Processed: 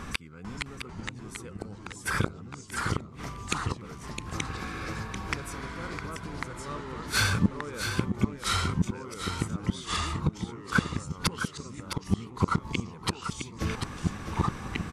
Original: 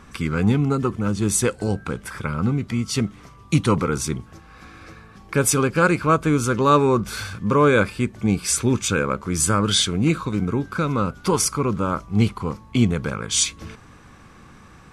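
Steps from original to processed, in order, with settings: inverted gate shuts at -17 dBFS, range -31 dB; delay 660 ms -7.5 dB; ever faster or slower copies 446 ms, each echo -2 st, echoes 2; trim +6.5 dB

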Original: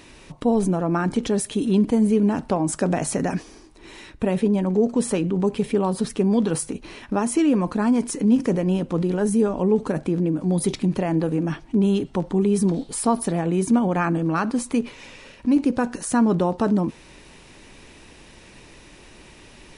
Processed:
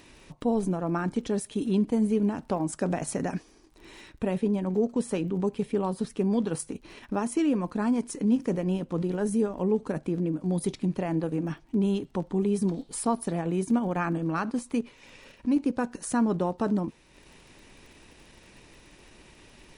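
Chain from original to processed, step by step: crackle 24 per s -40 dBFS; transient shaper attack 0 dB, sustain -6 dB; trim -6 dB

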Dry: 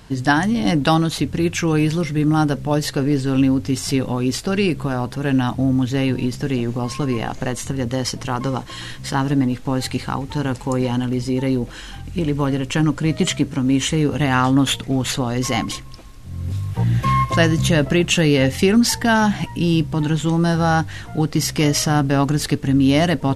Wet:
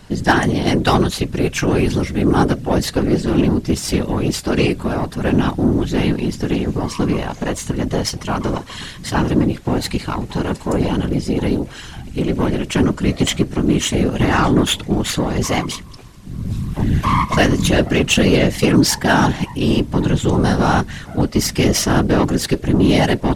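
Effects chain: Chebyshev shaper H 8 -25 dB, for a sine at -2 dBFS; whisper effect; trim +1.5 dB

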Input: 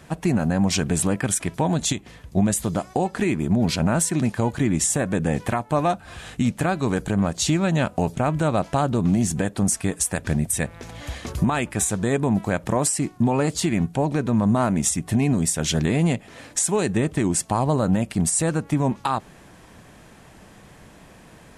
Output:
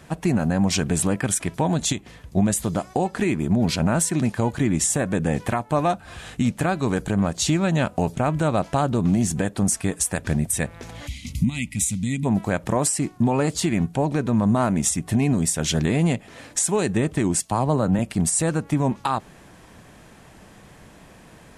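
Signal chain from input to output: 11.07–12.26 s: time-frequency box 300–1900 Hz -24 dB; 17.40–17.99 s: three bands expanded up and down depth 40%

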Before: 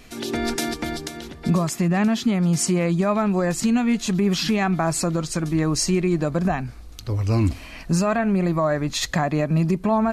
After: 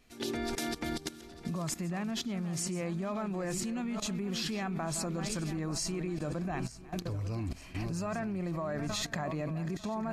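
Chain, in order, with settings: backward echo that repeats 448 ms, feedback 59%, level -11.5 dB; pre-echo 51 ms -23 dB; level held to a coarse grid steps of 15 dB; trim -4.5 dB

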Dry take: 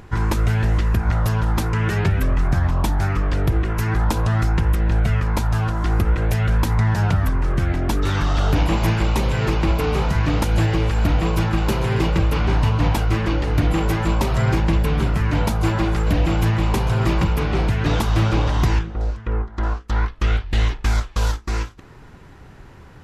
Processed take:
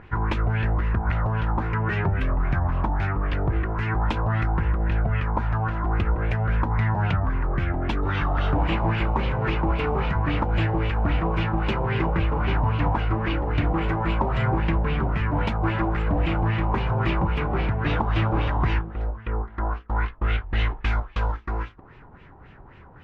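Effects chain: LFO low-pass sine 3.7 Hz 810–2900 Hz; trim -5 dB

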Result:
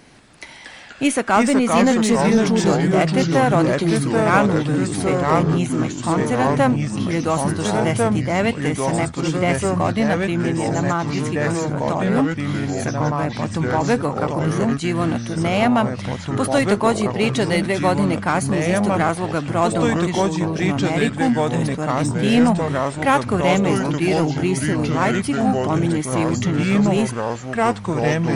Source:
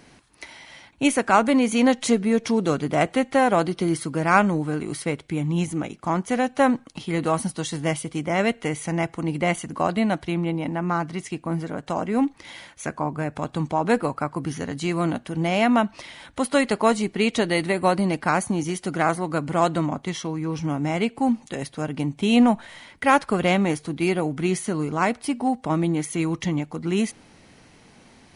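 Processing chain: ever faster or slower copies 152 ms, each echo -3 st, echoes 3; in parallel at -4.5 dB: overload inside the chain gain 19 dB; on the sum: trim -1 dB

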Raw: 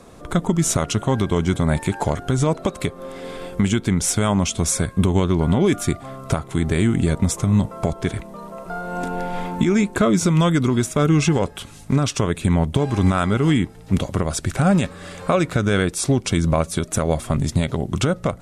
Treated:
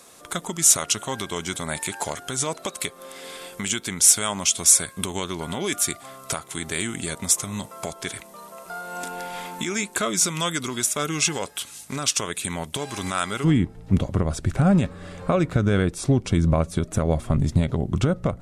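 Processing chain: tilt EQ +4 dB/octave, from 13.43 s -1.5 dB/octave; trim -4.5 dB

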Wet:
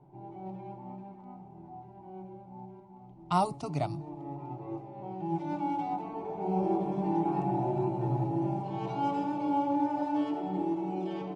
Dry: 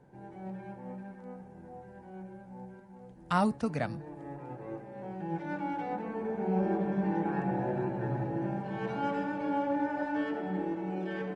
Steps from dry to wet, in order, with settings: static phaser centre 330 Hz, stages 8; level-controlled noise filter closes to 2.1 kHz, open at -31 dBFS; trim +4 dB

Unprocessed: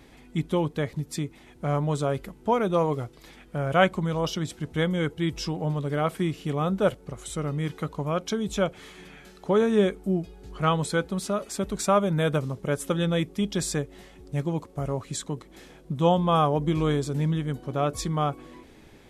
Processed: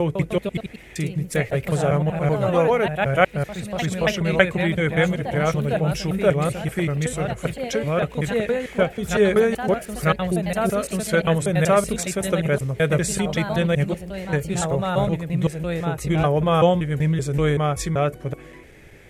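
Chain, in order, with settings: slices played last to first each 191 ms, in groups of 4; ten-band graphic EQ 125 Hz +3 dB, 250 Hz -9 dB, 500 Hz +3 dB, 1 kHz -9 dB, 2 kHz +8 dB, 4 kHz -8 dB; ever faster or slower copies 152 ms, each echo +2 st, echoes 2, each echo -6 dB; trim +6 dB

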